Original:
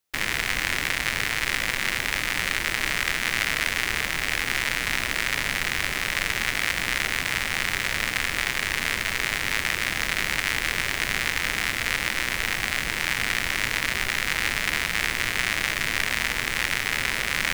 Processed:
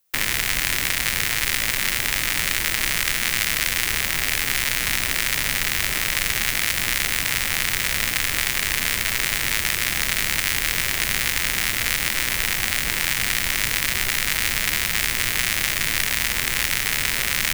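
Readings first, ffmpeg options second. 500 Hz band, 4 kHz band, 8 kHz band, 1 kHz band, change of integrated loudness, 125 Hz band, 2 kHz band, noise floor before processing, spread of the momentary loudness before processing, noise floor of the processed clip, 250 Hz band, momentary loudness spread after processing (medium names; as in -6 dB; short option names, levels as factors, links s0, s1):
0.0 dB, +4.0 dB, +8.5 dB, 0.0 dB, +4.0 dB, +3.5 dB, +1.0 dB, -30 dBFS, 1 LU, -25 dBFS, +1.0 dB, 1 LU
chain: -filter_complex "[0:a]highshelf=f=9300:g=11.5,acrossover=split=180|3000[s0][s1][s2];[s1]acompressor=threshold=0.0501:ratio=6[s3];[s0][s3][s2]amix=inputs=3:normalize=0,volume=1.58"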